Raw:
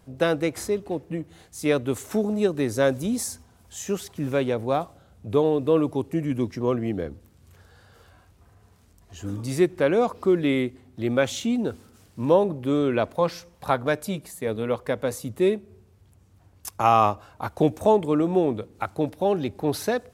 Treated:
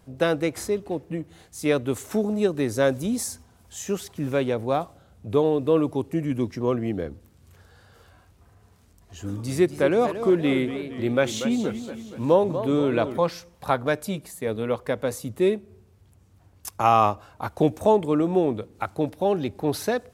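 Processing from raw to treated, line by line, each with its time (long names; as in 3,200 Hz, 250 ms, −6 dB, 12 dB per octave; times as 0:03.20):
0:09.23–0:13.18: feedback echo with a swinging delay time 234 ms, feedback 55%, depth 171 cents, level −10.5 dB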